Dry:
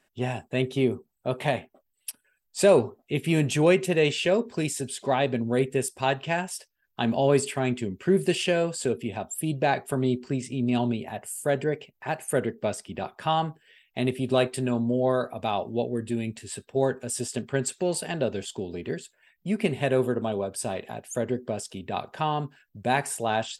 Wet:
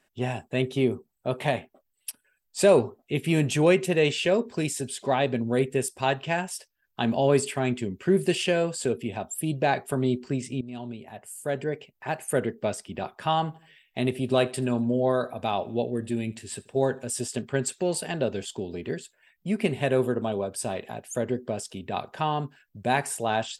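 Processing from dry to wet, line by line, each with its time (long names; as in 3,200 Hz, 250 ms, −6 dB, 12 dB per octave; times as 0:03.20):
0:10.61–0:12.19: fade in, from −16.5 dB
0:13.38–0:17.06: repeating echo 81 ms, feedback 45%, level −23 dB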